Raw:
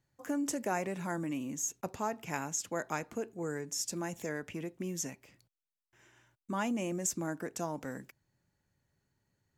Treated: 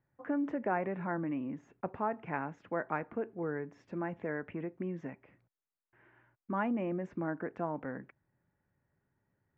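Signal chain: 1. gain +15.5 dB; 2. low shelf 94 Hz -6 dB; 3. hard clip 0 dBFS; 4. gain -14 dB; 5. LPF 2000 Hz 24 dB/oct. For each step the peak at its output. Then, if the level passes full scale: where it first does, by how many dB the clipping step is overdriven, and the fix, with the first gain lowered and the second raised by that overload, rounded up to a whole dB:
-2.0, -2.5, -2.5, -16.5, -18.5 dBFS; no overload

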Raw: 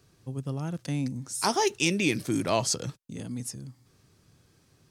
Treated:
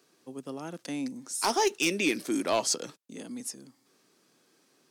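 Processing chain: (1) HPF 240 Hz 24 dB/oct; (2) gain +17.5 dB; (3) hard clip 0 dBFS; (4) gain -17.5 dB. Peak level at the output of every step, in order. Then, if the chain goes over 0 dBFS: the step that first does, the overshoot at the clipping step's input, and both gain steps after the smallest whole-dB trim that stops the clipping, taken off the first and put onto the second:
-9.5, +8.0, 0.0, -17.5 dBFS; step 2, 8.0 dB; step 2 +9.5 dB, step 4 -9.5 dB

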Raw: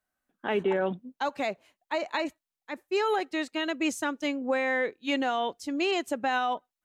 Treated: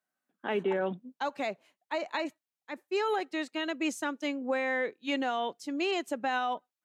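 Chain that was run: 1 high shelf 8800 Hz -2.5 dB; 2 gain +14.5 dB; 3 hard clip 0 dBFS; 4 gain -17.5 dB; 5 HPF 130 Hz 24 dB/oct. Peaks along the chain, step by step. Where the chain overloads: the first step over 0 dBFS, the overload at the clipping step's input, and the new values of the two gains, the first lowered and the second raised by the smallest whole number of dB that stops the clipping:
-18.0, -3.5, -3.5, -21.0, -19.0 dBFS; no overload

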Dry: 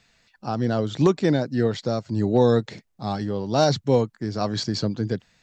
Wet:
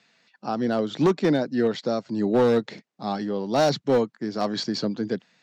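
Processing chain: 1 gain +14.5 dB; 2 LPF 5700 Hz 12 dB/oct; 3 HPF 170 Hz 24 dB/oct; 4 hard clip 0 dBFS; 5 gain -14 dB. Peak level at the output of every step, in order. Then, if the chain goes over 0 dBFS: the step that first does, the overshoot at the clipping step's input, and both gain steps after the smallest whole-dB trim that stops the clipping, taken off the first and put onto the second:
+6.5, +6.5, +7.0, 0.0, -14.0 dBFS; step 1, 7.0 dB; step 1 +7.5 dB, step 5 -7 dB

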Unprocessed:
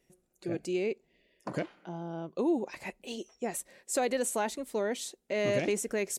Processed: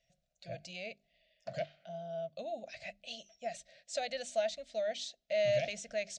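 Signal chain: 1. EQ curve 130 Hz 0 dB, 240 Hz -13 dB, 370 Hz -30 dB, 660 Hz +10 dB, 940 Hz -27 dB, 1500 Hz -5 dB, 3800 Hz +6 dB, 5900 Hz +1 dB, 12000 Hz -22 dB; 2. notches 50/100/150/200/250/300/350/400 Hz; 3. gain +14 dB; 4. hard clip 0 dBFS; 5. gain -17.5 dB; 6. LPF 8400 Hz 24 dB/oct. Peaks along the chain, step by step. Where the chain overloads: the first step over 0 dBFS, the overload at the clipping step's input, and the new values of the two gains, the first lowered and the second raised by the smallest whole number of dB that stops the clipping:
-18.5, -18.5, -4.5, -4.5, -22.0, -22.0 dBFS; no overload

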